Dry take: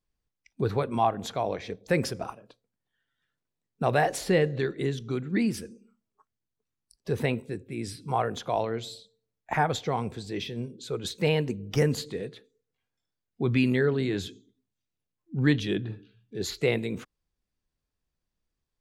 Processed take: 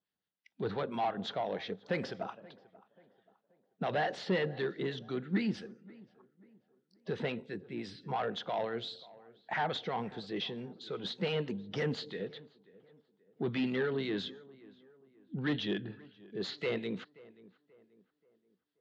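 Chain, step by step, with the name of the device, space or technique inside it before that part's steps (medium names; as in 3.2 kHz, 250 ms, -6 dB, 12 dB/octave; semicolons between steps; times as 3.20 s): tilt EQ +3 dB/octave; 15.73–16.42 s: band-stop 3.7 kHz, Q 6.5; guitar amplifier with harmonic tremolo (harmonic tremolo 5.8 Hz, depth 50%, crossover 1 kHz; saturation -27.5 dBFS, distortion -10 dB; cabinet simulation 110–3500 Hz, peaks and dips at 190 Hz +7 dB, 1.1 kHz -5 dB, 2.4 kHz -9 dB); tape echo 532 ms, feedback 45%, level -20 dB, low-pass 1.6 kHz; trim +1.5 dB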